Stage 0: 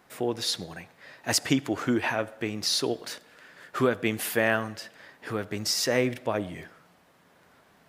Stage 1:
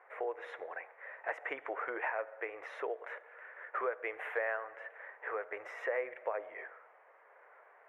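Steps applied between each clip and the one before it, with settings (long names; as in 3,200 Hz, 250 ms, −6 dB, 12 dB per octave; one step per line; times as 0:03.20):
elliptic band-pass filter 470–2,100 Hz, stop band 40 dB
downward compressor 2.5 to 1, threshold −38 dBFS, peak gain reduction 11.5 dB
level +1.5 dB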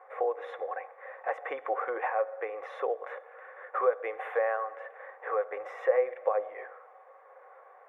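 hollow resonant body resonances 530/760/1,100/3,500 Hz, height 15 dB, ringing for 40 ms
level −1.5 dB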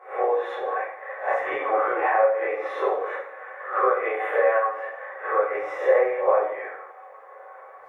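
peak hold with a rise ahead of every peak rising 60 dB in 0.37 s
convolution reverb RT60 0.70 s, pre-delay 17 ms, DRR −7.5 dB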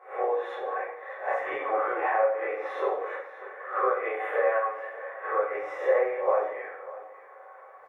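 single-tap delay 595 ms −17 dB
level −4.5 dB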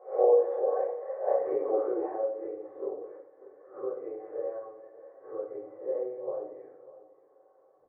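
low-pass filter sweep 540 Hz → 270 Hz, 0:01.16–0:02.64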